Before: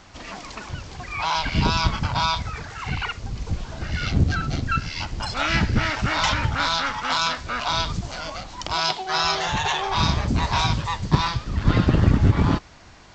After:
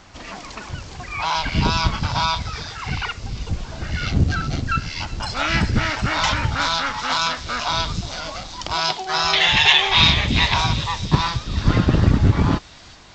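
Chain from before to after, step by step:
0:09.33–0:10.54: flat-topped bell 2,700 Hz +13 dB 1.3 octaves
delay with a high-pass on its return 378 ms, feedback 58%, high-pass 4,900 Hz, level −5.5 dB
level +1.5 dB

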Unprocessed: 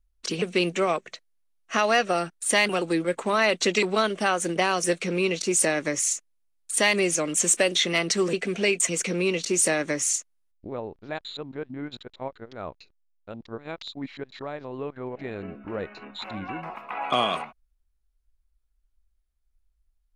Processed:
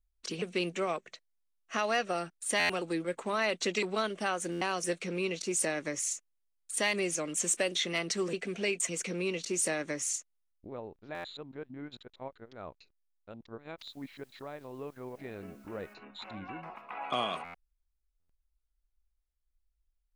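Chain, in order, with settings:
0:13.78–0:15.93: background noise white −61 dBFS
buffer that repeats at 0:02.59/0:04.51/0:11.14/0:17.44/0:18.19, samples 512, times 8
level −8.5 dB

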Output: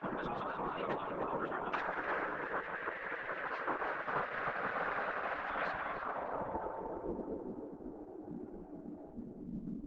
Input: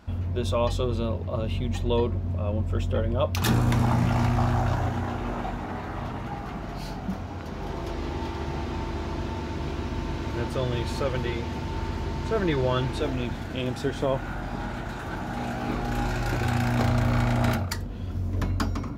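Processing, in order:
time stretch by phase vocoder 0.52×
downward compressor 8 to 1, threshold −31 dBFS, peak gain reduction 10.5 dB
low-pass filter sweep 1,400 Hz → 140 Hz, 0:05.72–0:07.06
high-shelf EQ 5,000 Hz −8.5 dB
brickwall limiter −28.5 dBFS, peak gain reduction 10 dB
tape delay 305 ms, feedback 56%, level −4.5 dB, low-pass 2,200 Hz
gate on every frequency bin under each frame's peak −15 dB weak
low-shelf EQ 180 Hz −7.5 dB
level +12 dB
Opus 12 kbit/s 48,000 Hz

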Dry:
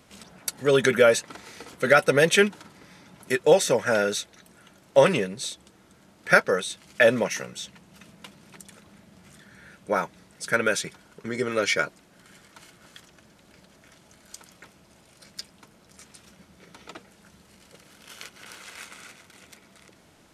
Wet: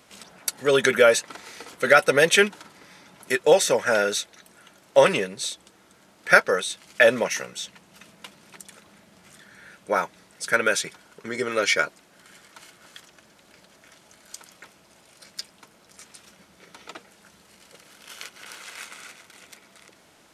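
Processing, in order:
low-shelf EQ 250 Hz −11 dB
level +3 dB

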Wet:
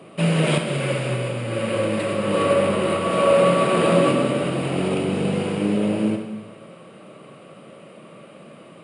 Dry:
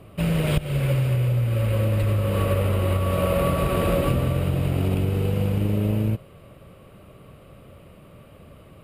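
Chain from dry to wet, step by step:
high-pass filter 180 Hz 24 dB per octave
dense smooth reverb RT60 1.2 s, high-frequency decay 0.9×, DRR 3 dB
level +5 dB
MP2 128 kbit/s 24,000 Hz

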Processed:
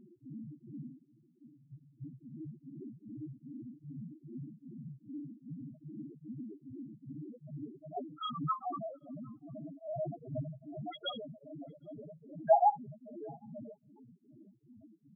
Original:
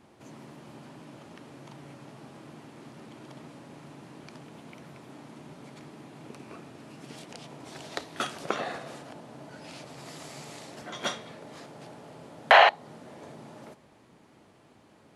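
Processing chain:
0:01.03–0:02.02: noise gate with hold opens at −35 dBFS
0:08.18–0:08.82: comb filter 0.9 ms, depth 96%
0:09.71–0:10.13: thrown reverb, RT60 2.3 s, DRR −7.5 dB
spectral peaks only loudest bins 1
slap from a distant wall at 130 metres, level −29 dB
tremolo along a rectified sine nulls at 2.5 Hz
level +15 dB

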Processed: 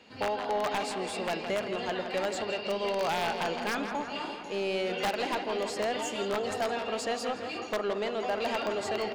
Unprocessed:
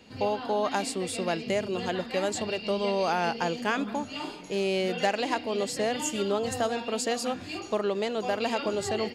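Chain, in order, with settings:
wrap-around overflow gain 17.5 dB
feedback echo with a low-pass in the loop 166 ms, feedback 71%, low-pass 3,000 Hz, level −9 dB
mid-hump overdrive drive 13 dB, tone 2,700 Hz, clips at −14.5 dBFS
level −5.5 dB

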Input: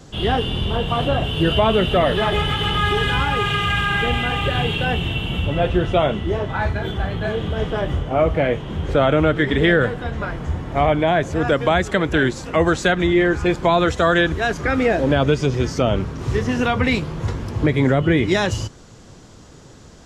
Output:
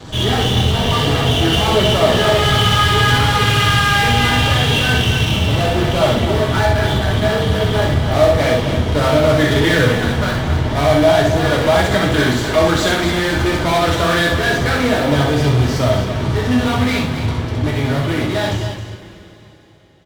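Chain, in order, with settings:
fade-out on the ending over 6.36 s
bass and treble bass +1 dB, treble −8 dB
in parallel at −3 dB: fuzz pedal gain 35 dB, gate −43 dBFS
on the sum: parametric band 3,600 Hz +5.5 dB 0.69 octaves
notch filter 2,600 Hz, Q 29
on a send: loudspeakers that aren't time-aligned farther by 22 metres −4 dB, 92 metres −9 dB
on the sum: healed spectral selection 0:00.81–0:01.69, 360–770 Hz before
coupled-rooms reverb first 0.3 s, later 3.7 s, from −20 dB, DRR −0.5 dB
level −7.5 dB

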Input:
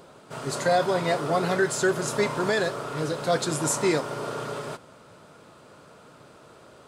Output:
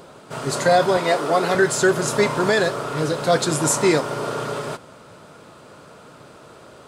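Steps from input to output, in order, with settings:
0:00.97–0:01.55: high-pass filter 250 Hz 12 dB per octave
level +6 dB

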